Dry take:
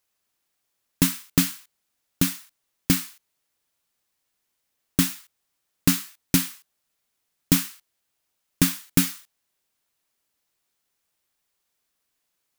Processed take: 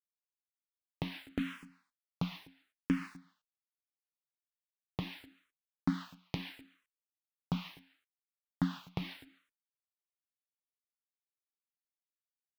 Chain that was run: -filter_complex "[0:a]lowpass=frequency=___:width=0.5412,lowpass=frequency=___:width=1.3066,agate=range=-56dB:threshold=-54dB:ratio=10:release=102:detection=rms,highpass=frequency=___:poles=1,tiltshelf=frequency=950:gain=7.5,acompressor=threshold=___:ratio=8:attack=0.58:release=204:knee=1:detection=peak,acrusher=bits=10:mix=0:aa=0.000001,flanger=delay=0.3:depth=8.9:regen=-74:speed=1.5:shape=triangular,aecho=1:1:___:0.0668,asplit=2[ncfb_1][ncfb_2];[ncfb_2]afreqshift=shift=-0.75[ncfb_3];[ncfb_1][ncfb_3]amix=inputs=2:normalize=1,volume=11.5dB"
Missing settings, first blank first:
3600, 3600, 360, -28dB, 251